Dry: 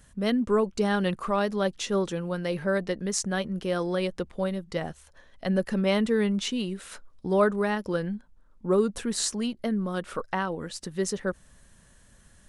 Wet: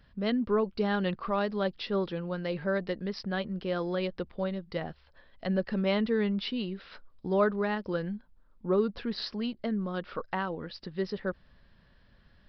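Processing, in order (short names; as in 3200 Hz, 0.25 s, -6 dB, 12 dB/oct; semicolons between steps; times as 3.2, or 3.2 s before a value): downsampling 11025 Hz; gain -3.5 dB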